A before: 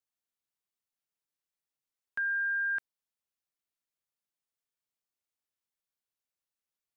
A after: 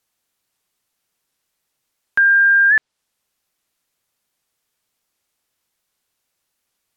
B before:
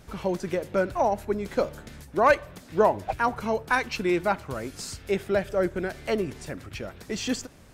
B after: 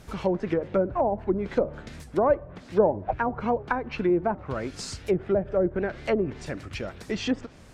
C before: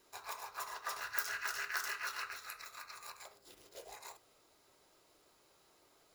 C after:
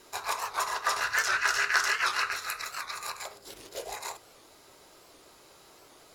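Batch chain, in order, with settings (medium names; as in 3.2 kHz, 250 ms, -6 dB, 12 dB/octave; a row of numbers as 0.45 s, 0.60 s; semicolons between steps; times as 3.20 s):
low-pass that closes with the level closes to 620 Hz, closed at -21 dBFS; warped record 78 rpm, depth 160 cents; peak normalisation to -9 dBFS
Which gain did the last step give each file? +18.5 dB, +2.5 dB, +13.5 dB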